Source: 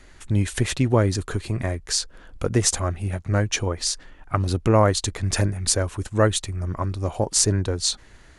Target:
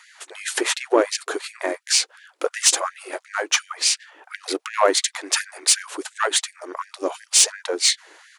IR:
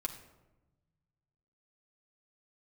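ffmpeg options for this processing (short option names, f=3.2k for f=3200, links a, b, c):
-filter_complex "[0:a]asplit=3[a][b][c];[b]asetrate=22050,aresample=44100,atempo=2,volume=-9dB[d];[c]asetrate=37084,aresample=44100,atempo=1.18921,volume=-15dB[e];[a][d][e]amix=inputs=3:normalize=0,acontrast=72,afftfilt=real='re*gte(b*sr/1024,270*pow(1600/270,0.5+0.5*sin(2*PI*2.8*pts/sr)))':imag='im*gte(b*sr/1024,270*pow(1600/270,0.5+0.5*sin(2*PI*2.8*pts/sr)))':win_size=1024:overlap=0.75,volume=-1dB"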